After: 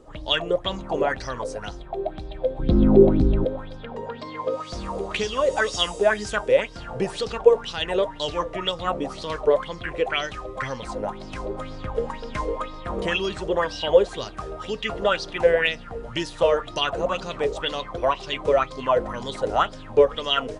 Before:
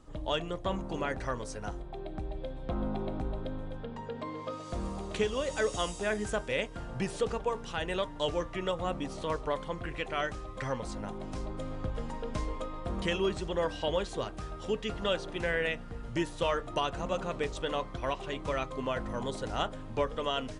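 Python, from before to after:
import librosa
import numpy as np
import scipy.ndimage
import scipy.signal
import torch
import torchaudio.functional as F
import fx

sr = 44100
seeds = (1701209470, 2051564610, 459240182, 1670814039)

y = fx.low_shelf_res(x, sr, hz=510.0, db=13.5, q=1.5, at=(2.59, 3.45))
y = fx.bell_lfo(y, sr, hz=2.0, low_hz=430.0, high_hz=5300.0, db=18)
y = y * librosa.db_to_amplitude(2.0)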